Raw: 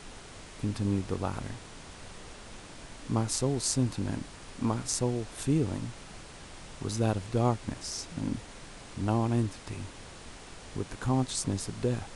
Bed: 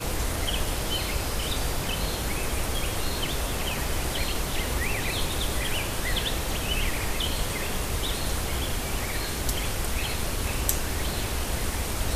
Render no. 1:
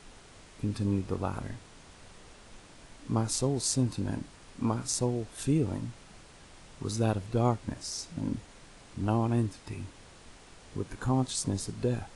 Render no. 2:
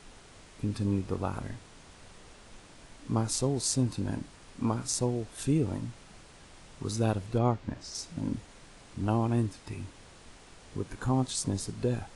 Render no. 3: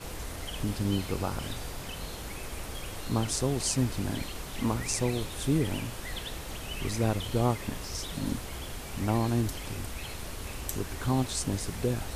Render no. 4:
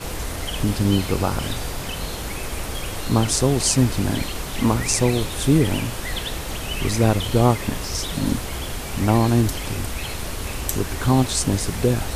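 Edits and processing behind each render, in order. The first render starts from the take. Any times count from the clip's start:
noise print and reduce 6 dB
7.38–7.95 air absorption 98 m
add bed -10.5 dB
gain +10 dB

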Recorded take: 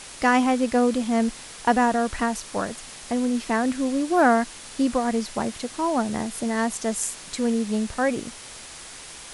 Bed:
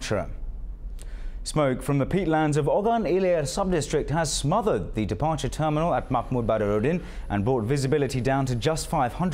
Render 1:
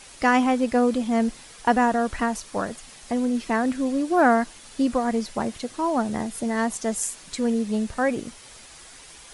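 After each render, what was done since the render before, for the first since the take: denoiser 7 dB, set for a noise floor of -41 dBFS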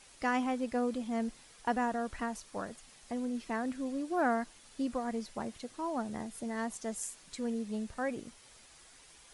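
gain -12 dB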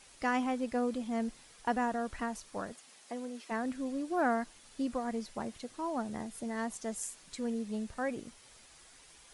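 2.72–3.5 HPF 200 Hz -> 440 Hz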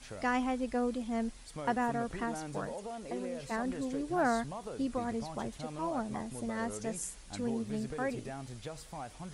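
add bed -19.5 dB

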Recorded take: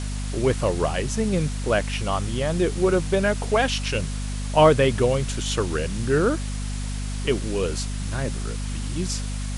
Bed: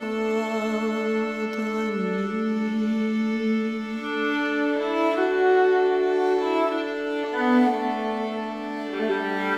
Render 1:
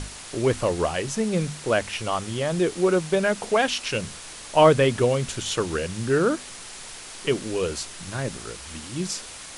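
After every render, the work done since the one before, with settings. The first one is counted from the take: notches 50/100/150/200/250 Hz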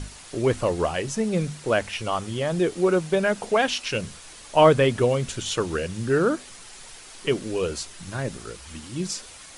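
denoiser 6 dB, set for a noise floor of -40 dBFS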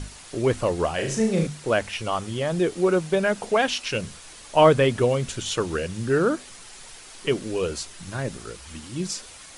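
0.95–1.47 flutter echo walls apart 6.2 m, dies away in 0.47 s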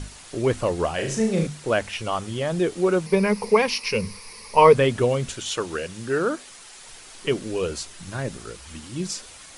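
3.06–4.75 ripple EQ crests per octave 0.87, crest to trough 14 dB; 5.34–6.87 low shelf 230 Hz -9.5 dB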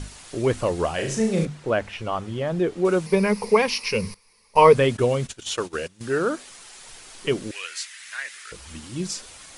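1.45–2.85 LPF 2000 Hz 6 dB/oct; 4.14–6.01 gate -33 dBFS, range -18 dB; 7.51–8.52 resonant high-pass 1900 Hz, resonance Q 3.2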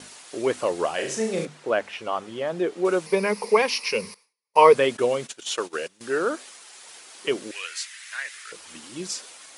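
expander -42 dBFS; HPF 320 Hz 12 dB/oct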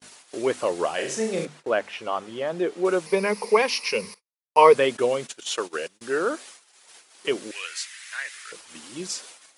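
gate -44 dBFS, range -33 dB; low shelf 80 Hz -6 dB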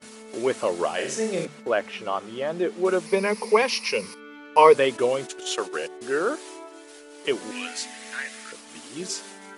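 add bed -19.5 dB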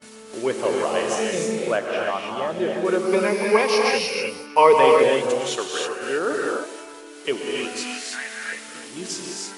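echo with dull and thin repeats by turns 0.16 s, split 880 Hz, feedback 56%, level -14 dB; non-linear reverb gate 0.34 s rising, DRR -1 dB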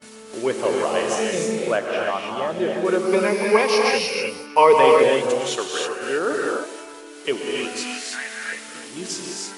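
gain +1 dB; limiter -3 dBFS, peak gain reduction 2 dB

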